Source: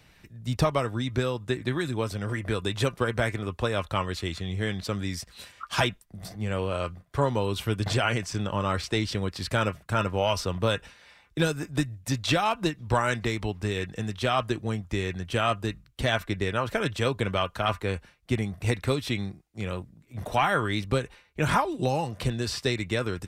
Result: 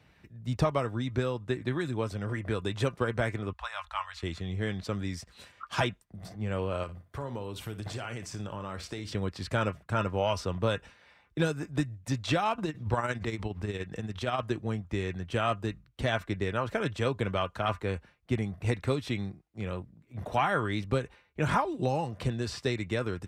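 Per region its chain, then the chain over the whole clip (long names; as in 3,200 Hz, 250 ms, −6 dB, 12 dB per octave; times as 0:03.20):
0:03.53–0:04.23: inverse Chebyshev band-stop filter 120–410 Hz, stop band 50 dB + high-shelf EQ 8,800 Hz −8 dB
0:06.83–0:09.12: high-shelf EQ 8,900 Hz +12 dB + downward compressor 4 to 1, threshold −31 dBFS + flutter between parallel walls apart 9.8 metres, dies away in 0.25 s
0:12.58–0:14.43: amplitude tremolo 17 Hz, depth 62% + background raised ahead of every attack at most 130 dB per second
whole clip: dynamic equaliser 7,300 Hz, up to +5 dB, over −51 dBFS, Q 1.1; high-pass filter 47 Hz; high-shelf EQ 3,800 Hz −12 dB; level −2.5 dB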